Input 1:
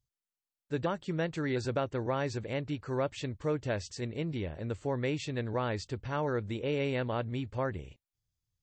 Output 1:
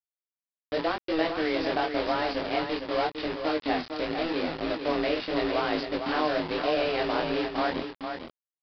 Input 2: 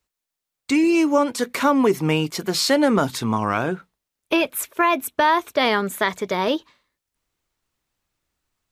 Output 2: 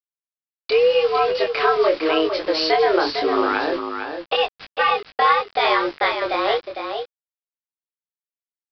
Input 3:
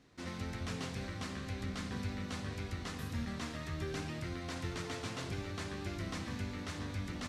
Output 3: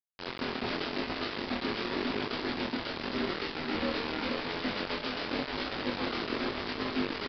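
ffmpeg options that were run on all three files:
-filter_complex "[0:a]asplit=2[a][b];[b]acompressor=threshold=-29dB:ratio=16,volume=2dB[c];[a][c]amix=inputs=2:normalize=0,afreqshift=160,aresample=16000,acrusher=bits=4:mix=0:aa=0.000001,aresample=44100,flanger=delay=18.5:depth=8:speed=0.87,aecho=1:1:454:0.447,aresample=11025,aresample=44100,volume=1dB"

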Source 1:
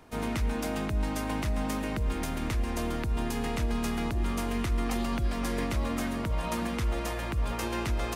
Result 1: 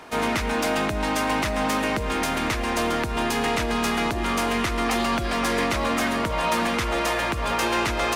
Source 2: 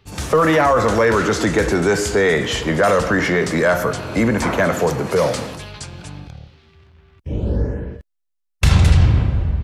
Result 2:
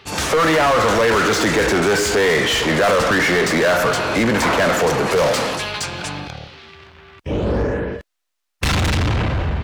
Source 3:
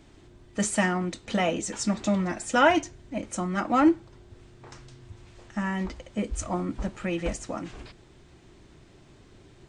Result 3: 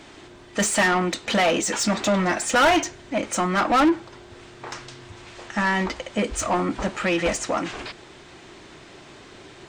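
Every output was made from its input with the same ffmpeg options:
-filter_complex "[0:a]asoftclip=type=hard:threshold=-13.5dB,asplit=2[a][b];[b]highpass=f=720:p=1,volume=20dB,asoftclip=type=tanh:threshold=-13.5dB[c];[a][c]amix=inputs=2:normalize=0,lowpass=f=5k:p=1,volume=-6dB,volume=1.5dB"

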